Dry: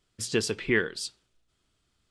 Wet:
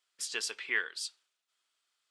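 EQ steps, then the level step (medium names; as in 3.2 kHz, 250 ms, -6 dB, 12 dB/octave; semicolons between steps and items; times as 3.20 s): high-pass 1 kHz 12 dB/octave; -3.0 dB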